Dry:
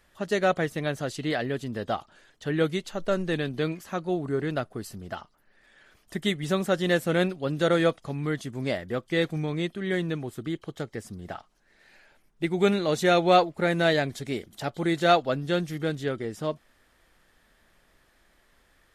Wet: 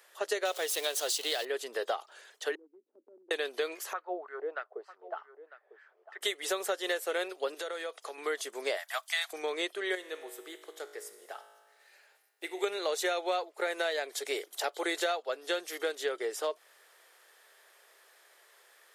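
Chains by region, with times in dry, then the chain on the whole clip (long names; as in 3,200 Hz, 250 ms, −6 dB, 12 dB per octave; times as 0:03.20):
0:00.45–0:01.45: converter with a step at zero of −38 dBFS + high shelf with overshoot 2,600 Hz +7 dB, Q 1.5
0:02.55–0:03.31: downward expander −42 dBFS + flat-topped band-pass 260 Hz, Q 3.3 + downward compressor 10 to 1, threshold −46 dBFS
0:03.93–0:06.21: LFO wah 3.3 Hz 500–1,800 Hz, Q 2.3 + head-to-tape spacing loss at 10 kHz 21 dB + single-tap delay 950 ms −16 dB
0:07.54–0:08.18: low-shelf EQ 180 Hz −11 dB + downward compressor 12 to 1, threshold −35 dBFS
0:08.77–0:09.33: Butterworth high-pass 630 Hz 96 dB per octave + high-shelf EQ 4,100 Hz +9 dB
0:09.95–0:12.64: high-shelf EQ 11,000 Hz +9.5 dB + tuned comb filter 53 Hz, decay 1.5 s, mix 70%
whole clip: elliptic high-pass filter 410 Hz, stop band 70 dB; high-shelf EQ 5,500 Hz +8 dB; downward compressor 12 to 1, threshold −31 dBFS; level +3 dB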